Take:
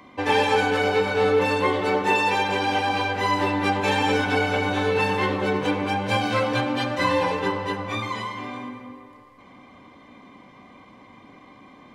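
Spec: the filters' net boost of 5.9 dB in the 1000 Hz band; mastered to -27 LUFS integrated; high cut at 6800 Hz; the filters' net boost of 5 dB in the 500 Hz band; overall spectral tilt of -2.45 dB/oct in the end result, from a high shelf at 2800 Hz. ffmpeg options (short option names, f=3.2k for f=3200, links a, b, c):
-af "lowpass=6.8k,equalizer=f=500:t=o:g=4.5,equalizer=f=1k:t=o:g=5,highshelf=f=2.8k:g=6,volume=-9dB"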